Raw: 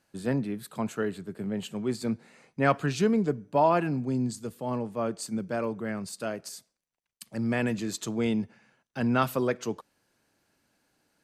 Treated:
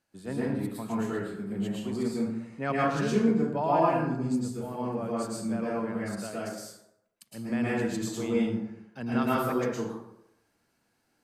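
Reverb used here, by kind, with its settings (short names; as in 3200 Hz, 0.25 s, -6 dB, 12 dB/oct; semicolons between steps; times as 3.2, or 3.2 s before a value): plate-style reverb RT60 0.8 s, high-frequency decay 0.55×, pre-delay 0.1 s, DRR -7 dB; gain -8.5 dB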